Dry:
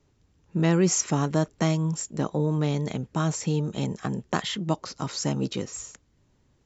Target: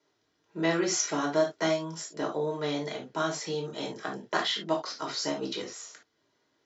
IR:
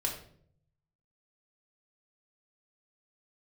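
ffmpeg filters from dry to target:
-filter_complex "[0:a]highpass=480,equalizer=f=520:t=q:w=4:g=-5,equalizer=f=970:t=q:w=4:g=-6,equalizer=f=2.6k:t=q:w=4:g=-6,lowpass=f=5.6k:w=0.5412,lowpass=f=5.6k:w=1.3066[a];[1:a]atrim=start_sample=2205,atrim=end_sample=3528[b];[a][b]afir=irnorm=-1:irlink=0"

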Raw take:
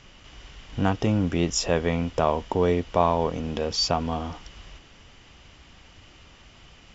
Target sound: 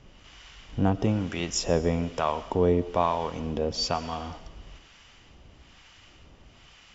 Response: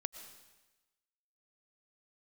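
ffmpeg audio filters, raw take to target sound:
-filter_complex "[0:a]acrossover=split=820[a][b];[a]aeval=exprs='val(0)*(1-0.7/2+0.7/2*cos(2*PI*1.1*n/s))':c=same[c];[b]aeval=exprs='val(0)*(1-0.7/2-0.7/2*cos(2*PI*1.1*n/s))':c=same[d];[c][d]amix=inputs=2:normalize=0,asplit=2[e][f];[1:a]atrim=start_sample=2205[g];[f][g]afir=irnorm=-1:irlink=0,volume=0dB[h];[e][h]amix=inputs=2:normalize=0,volume=-4.5dB"

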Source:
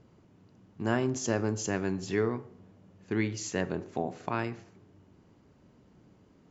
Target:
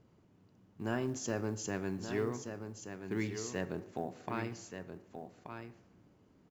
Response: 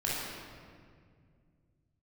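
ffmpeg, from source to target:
-filter_complex "[0:a]asplit=2[a][b];[1:a]atrim=start_sample=2205,lowshelf=f=170:g=-9,adelay=11[c];[b][c]afir=irnorm=-1:irlink=0,volume=-29.5dB[d];[a][d]amix=inputs=2:normalize=0,asoftclip=type=tanh:threshold=-14.5dB,acrusher=bits=9:mode=log:mix=0:aa=0.000001,aecho=1:1:1179:0.398,volume=-6dB"

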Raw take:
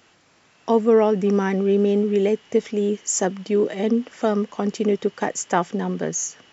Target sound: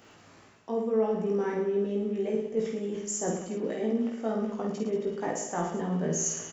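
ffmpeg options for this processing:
-filter_complex "[0:a]equalizer=f=3.7k:w=0.46:g=-6.5,areverse,acompressor=threshold=-33dB:ratio=5,areverse,asplit=2[a][b];[b]adelay=18,volume=-3dB[c];[a][c]amix=inputs=2:normalize=0,aecho=1:1:50|110|182|268.4|372.1:0.631|0.398|0.251|0.158|0.1,volume=2dB"

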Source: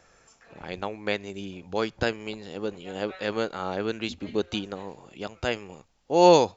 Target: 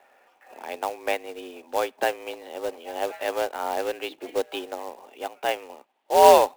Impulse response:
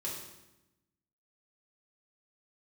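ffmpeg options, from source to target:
-af "highpass=f=210:w=0.5412,highpass=f=210:w=1.3066,equalizer=f=230:t=q:w=4:g=-8,equalizer=f=710:t=q:w=4:g=8,equalizer=f=1.3k:t=q:w=4:g=-4,lowpass=f=3.1k:w=0.5412,lowpass=f=3.1k:w=1.3066,afreqshift=71,acrusher=bits=3:mode=log:mix=0:aa=0.000001,volume=1dB"

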